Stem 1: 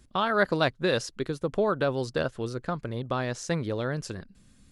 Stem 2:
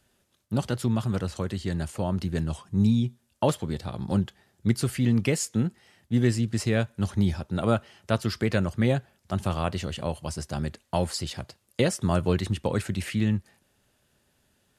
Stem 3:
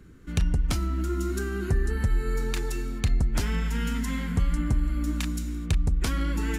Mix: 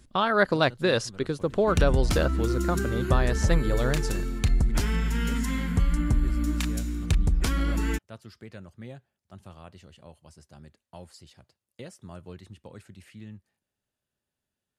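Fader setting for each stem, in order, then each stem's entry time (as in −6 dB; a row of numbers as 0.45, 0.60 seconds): +2.0, −19.0, +1.0 decibels; 0.00, 0.00, 1.40 seconds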